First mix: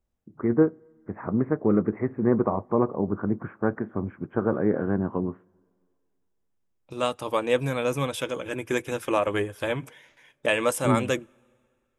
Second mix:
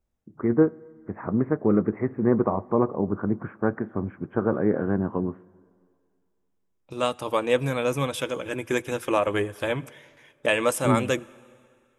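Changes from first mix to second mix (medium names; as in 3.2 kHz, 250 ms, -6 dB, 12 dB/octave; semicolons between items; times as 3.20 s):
first voice: send +8.5 dB; second voice: send +11.5 dB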